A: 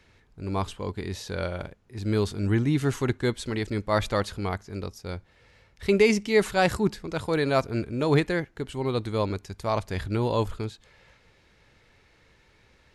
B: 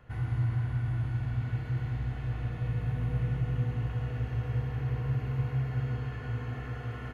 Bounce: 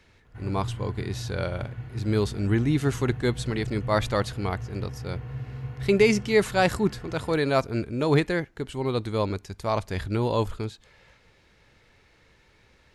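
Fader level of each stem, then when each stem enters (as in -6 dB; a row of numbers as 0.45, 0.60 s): +0.5, -4.5 dB; 0.00, 0.25 s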